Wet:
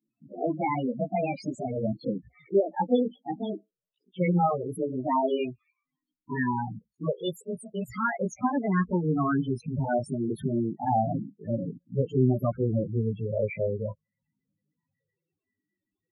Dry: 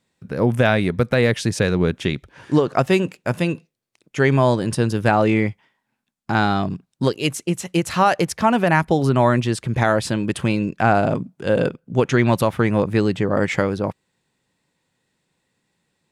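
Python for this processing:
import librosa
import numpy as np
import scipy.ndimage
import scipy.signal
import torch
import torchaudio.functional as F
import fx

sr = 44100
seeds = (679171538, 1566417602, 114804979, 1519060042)

y = fx.pitch_glide(x, sr, semitones=5.5, runs='ending unshifted')
y = fx.chorus_voices(y, sr, voices=2, hz=0.24, base_ms=18, depth_ms=2.2, mix_pct=65)
y = fx.spec_topn(y, sr, count=8)
y = y * librosa.db_to_amplitude(-4.0)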